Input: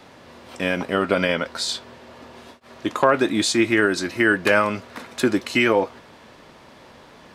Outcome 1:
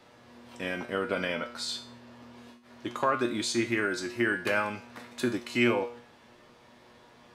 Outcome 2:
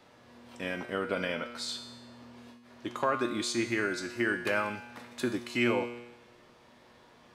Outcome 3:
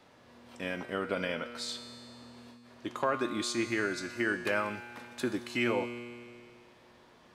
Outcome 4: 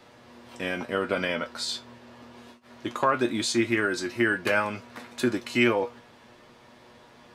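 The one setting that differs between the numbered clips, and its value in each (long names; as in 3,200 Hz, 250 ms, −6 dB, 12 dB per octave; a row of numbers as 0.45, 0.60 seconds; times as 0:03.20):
tuned comb filter, decay: 0.44, 1, 2.2, 0.16 seconds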